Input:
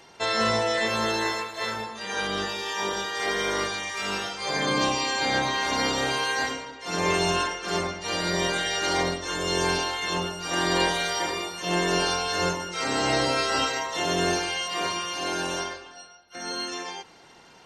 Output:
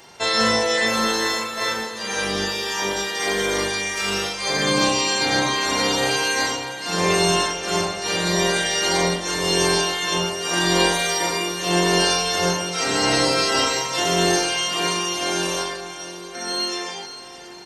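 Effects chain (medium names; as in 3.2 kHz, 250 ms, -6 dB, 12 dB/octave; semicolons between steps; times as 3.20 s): treble shelf 7.2 kHz +10 dB; doubling 40 ms -5 dB; echo that smears into a reverb 602 ms, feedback 46%, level -13 dB; trim +3 dB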